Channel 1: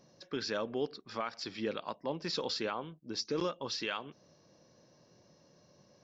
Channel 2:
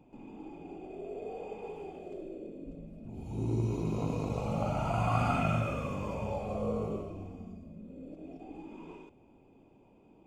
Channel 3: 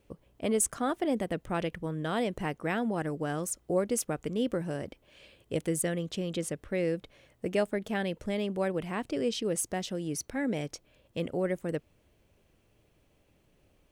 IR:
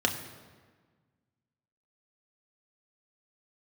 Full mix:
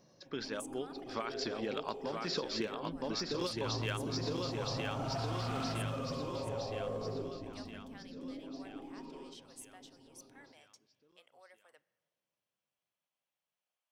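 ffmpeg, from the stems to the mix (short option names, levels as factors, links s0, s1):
-filter_complex "[0:a]dynaudnorm=f=250:g=9:m=2.51,asoftclip=type=hard:threshold=0.133,volume=0.794,asplit=2[s0][s1];[s1]volume=0.447[s2];[1:a]aecho=1:1:7.5:0.86,volume=22.4,asoftclip=hard,volume=0.0447,adelay=250,volume=0.473,asplit=2[s3][s4];[s4]volume=0.15[s5];[2:a]highpass=f=790:w=0.5412,highpass=f=790:w=1.3066,volume=0.112,asplit=3[s6][s7][s8];[s7]volume=0.0794[s9];[s8]apad=whole_len=266298[s10];[s0][s10]sidechaincompress=threshold=0.001:ratio=8:attack=8.4:release=104[s11];[3:a]atrim=start_sample=2205[s12];[s5][s9]amix=inputs=2:normalize=0[s13];[s13][s12]afir=irnorm=-1:irlink=0[s14];[s2]aecho=0:1:964|1928|2892|3856|4820|5784|6748|7712:1|0.55|0.303|0.166|0.0915|0.0503|0.0277|0.0152[s15];[s11][s3][s6][s14][s15]amix=inputs=5:normalize=0,acrossover=split=2500|5300[s16][s17][s18];[s16]acompressor=threshold=0.02:ratio=4[s19];[s17]acompressor=threshold=0.00501:ratio=4[s20];[s18]acompressor=threshold=0.00631:ratio=4[s21];[s19][s20][s21]amix=inputs=3:normalize=0"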